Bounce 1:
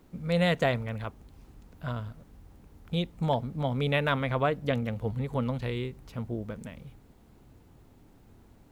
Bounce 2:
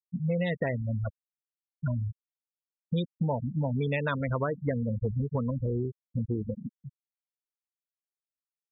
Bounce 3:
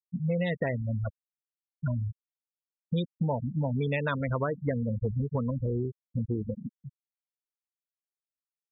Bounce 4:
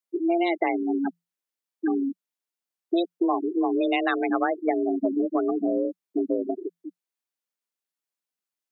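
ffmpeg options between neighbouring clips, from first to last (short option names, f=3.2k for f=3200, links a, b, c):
-af "afftfilt=real='re*gte(hypot(re,im),0.0708)':imag='im*gte(hypot(re,im),0.0708)':win_size=1024:overlap=0.75,equalizer=f=740:w=5.6:g=-9.5,acompressor=threshold=-34dB:ratio=6,volume=8dB"
-af anull
-af "afreqshift=170,volume=5dB"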